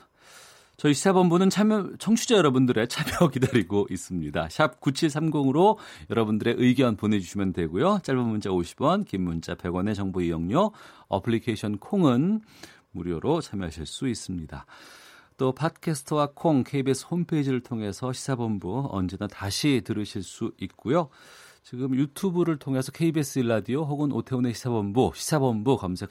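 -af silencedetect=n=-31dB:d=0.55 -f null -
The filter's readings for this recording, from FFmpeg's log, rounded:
silence_start: 0.00
silence_end: 0.84 | silence_duration: 0.84
silence_start: 14.58
silence_end: 15.40 | silence_duration: 0.83
silence_start: 21.05
silence_end: 21.73 | silence_duration: 0.68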